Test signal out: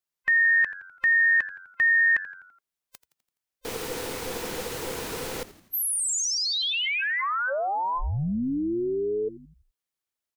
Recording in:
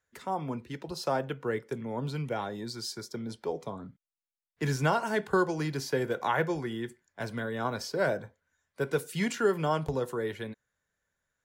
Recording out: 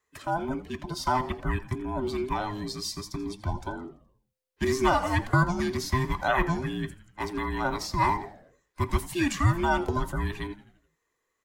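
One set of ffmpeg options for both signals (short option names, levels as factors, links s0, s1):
-filter_complex "[0:a]afftfilt=real='real(if(between(b,1,1008),(2*floor((b-1)/24)+1)*24-b,b),0)':imag='imag(if(between(b,1,1008),(2*floor((b-1)/24)+1)*24-b,b),0)*if(between(b,1,1008),-1,1)':win_size=2048:overlap=0.75,asplit=2[s0][s1];[s1]asplit=5[s2][s3][s4][s5][s6];[s2]adelay=84,afreqshift=-92,volume=0.15[s7];[s3]adelay=168,afreqshift=-184,volume=0.0767[s8];[s4]adelay=252,afreqshift=-276,volume=0.0389[s9];[s5]adelay=336,afreqshift=-368,volume=0.02[s10];[s6]adelay=420,afreqshift=-460,volume=0.0101[s11];[s7][s8][s9][s10][s11]amix=inputs=5:normalize=0[s12];[s0][s12]amix=inputs=2:normalize=0,volume=1.5"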